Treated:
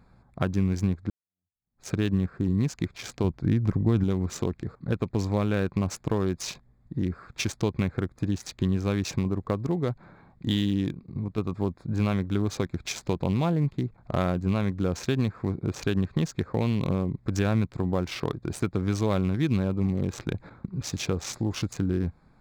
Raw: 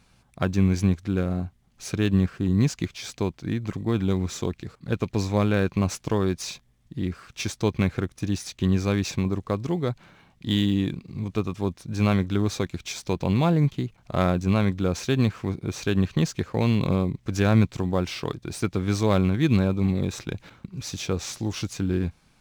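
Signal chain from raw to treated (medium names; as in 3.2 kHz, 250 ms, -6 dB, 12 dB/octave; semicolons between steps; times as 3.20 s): local Wiener filter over 15 samples; compression 2.5:1, threshold -28 dBFS, peak gain reduction 10 dB; 1.10–1.90 s: fade in exponential; 3.24–4.04 s: bass shelf 170 Hz +8.5 dB; 10.92–11.38 s: level held to a coarse grid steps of 11 dB; trim +3.5 dB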